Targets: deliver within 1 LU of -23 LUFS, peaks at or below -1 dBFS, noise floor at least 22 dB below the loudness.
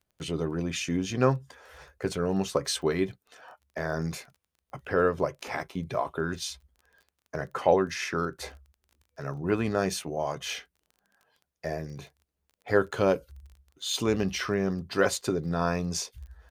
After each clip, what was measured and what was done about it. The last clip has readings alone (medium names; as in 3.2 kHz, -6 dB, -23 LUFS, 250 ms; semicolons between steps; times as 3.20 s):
tick rate 20 per s; loudness -29.5 LUFS; peak level -8.5 dBFS; loudness target -23.0 LUFS
-> de-click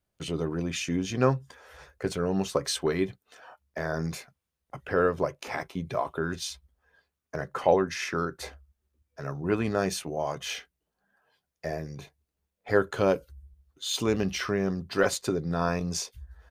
tick rate 0.061 per s; loudness -29.5 LUFS; peak level -8.5 dBFS; loudness target -23.0 LUFS
-> trim +6.5 dB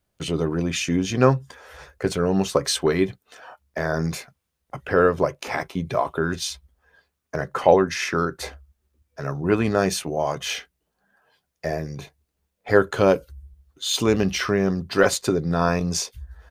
loudness -23.0 LUFS; peak level -2.0 dBFS; noise floor -78 dBFS